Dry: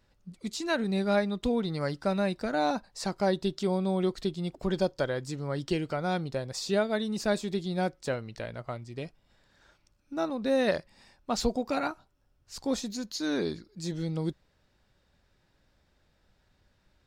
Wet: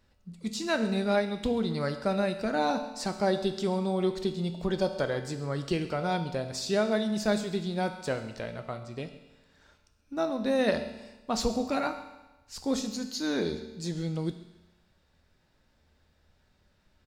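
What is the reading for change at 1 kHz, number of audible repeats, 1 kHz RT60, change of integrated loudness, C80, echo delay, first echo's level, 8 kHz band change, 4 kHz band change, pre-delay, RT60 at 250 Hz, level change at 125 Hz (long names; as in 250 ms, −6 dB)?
+1.0 dB, 1, 1.1 s, +0.5 dB, 11.0 dB, 135 ms, −18.5 dB, +1.0 dB, +1.0 dB, 5 ms, 1.1 s, 0.0 dB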